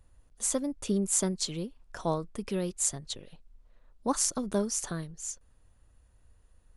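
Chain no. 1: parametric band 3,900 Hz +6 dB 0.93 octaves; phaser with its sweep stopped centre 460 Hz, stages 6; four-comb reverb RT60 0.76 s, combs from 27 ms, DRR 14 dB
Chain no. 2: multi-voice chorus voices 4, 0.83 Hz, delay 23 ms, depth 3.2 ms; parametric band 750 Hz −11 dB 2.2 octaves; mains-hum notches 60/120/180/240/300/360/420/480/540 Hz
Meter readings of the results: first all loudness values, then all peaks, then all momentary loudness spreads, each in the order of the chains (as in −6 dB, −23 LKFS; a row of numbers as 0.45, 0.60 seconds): −31.5, −35.5 LKFS; −7.5, −13.5 dBFS; 11, 15 LU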